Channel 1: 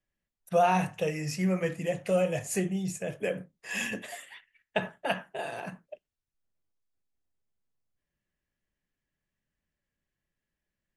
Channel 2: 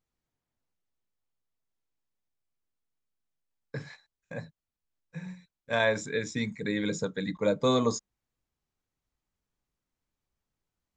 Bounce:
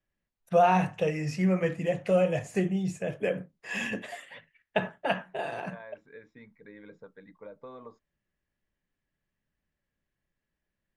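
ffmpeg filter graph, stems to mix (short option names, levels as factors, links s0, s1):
-filter_complex "[0:a]deesser=0.75,volume=1.26[s0];[1:a]lowpass=1600,equalizer=f=140:t=o:w=2.8:g=-12.5,acompressor=threshold=0.0316:ratio=6,volume=0.266[s1];[s0][s1]amix=inputs=2:normalize=0,aemphasis=mode=reproduction:type=50fm"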